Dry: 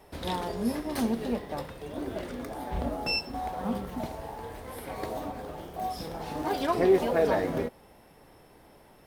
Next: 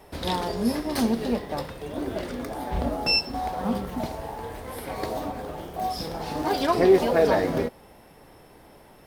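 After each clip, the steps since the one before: dynamic EQ 4800 Hz, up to +5 dB, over -57 dBFS, Q 2.4; gain +4.5 dB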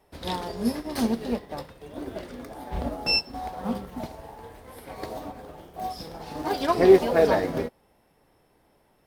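upward expander 1.5:1, over -44 dBFS; gain +3 dB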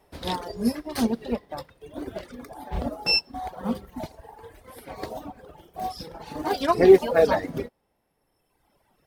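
reverb removal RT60 1.6 s; gain +2 dB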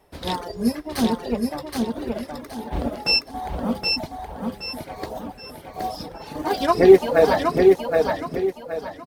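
feedback echo 0.771 s, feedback 33%, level -3.5 dB; gain +2.5 dB

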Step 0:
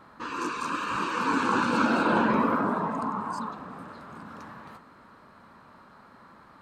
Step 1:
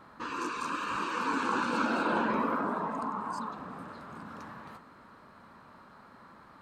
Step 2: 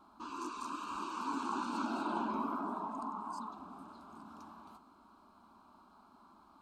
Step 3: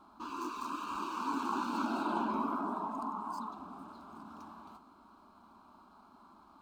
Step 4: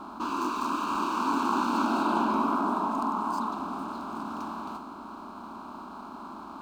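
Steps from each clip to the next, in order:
dynamic EQ 120 Hz, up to -7 dB, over -44 dBFS, Q 0.99; in parallel at -2 dB: compressor, threshold -33 dBFS, peak gain reduction 12.5 dB; on the sum: gain -6.5 dB
fixed phaser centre 500 Hz, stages 6; gain -5 dB
median filter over 5 samples; gain +2.5 dB
per-bin compression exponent 0.6; mismatched tape noise reduction decoder only; gain +5.5 dB

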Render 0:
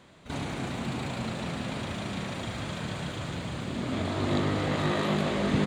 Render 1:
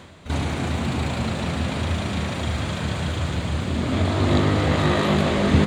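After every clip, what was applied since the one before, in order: bell 80 Hz +15 dB 0.32 oct; reverse; upward compressor, threshold -37 dBFS; reverse; gain +7 dB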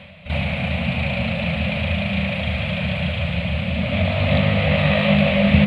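EQ curve 120 Hz 0 dB, 200 Hz +6 dB, 350 Hz -27 dB, 560 Hz +7 dB, 940 Hz -6 dB, 1600 Hz -4 dB, 2500 Hz +12 dB, 4200 Hz -5 dB, 6400 Hz -25 dB, 10000 Hz -12 dB; gain +1 dB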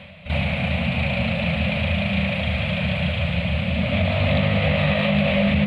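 limiter -10.5 dBFS, peak gain reduction 9 dB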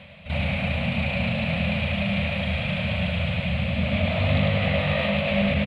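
echo 0.101 s -4 dB; gain -4 dB

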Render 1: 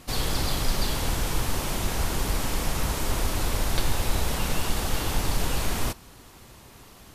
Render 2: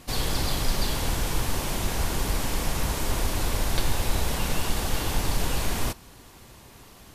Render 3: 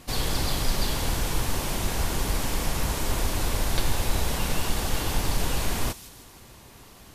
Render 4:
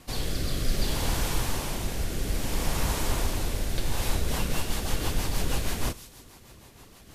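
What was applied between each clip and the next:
notch 1300 Hz, Q 24
thin delay 0.159 s, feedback 52%, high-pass 3700 Hz, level -11 dB
rotary speaker horn 0.6 Hz, later 6.3 Hz, at 3.74; reverb RT60 0.75 s, pre-delay 38 ms, DRR 20 dB

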